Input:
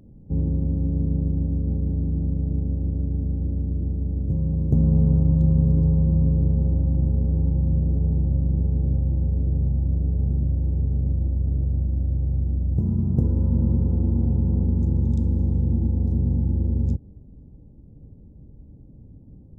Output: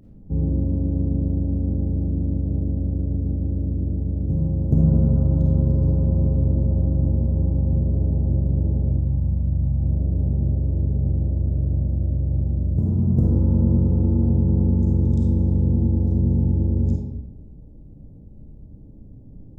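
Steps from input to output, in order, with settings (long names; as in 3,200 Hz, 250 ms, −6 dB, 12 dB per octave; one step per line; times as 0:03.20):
0:08.91–0:09.80: parametric band 420 Hz −11.5 dB 1.1 octaves
comb and all-pass reverb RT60 0.91 s, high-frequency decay 0.65×, pre-delay 10 ms, DRR −1 dB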